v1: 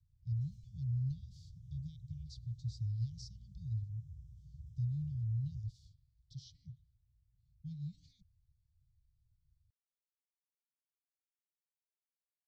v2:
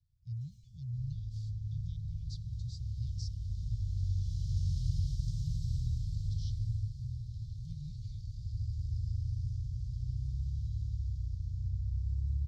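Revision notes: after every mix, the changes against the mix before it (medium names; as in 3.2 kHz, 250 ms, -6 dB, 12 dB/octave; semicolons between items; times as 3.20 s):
second sound: unmuted; master: add tilt shelf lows -3.5 dB, about 840 Hz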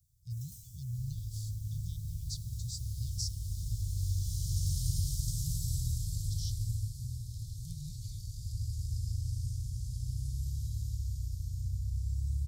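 first sound +5.5 dB; master: remove distance through air 220 m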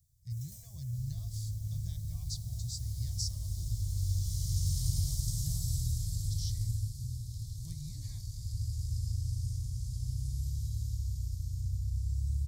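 master: remove elliptic band-stop 180–2900 Hz, stop band 40 dB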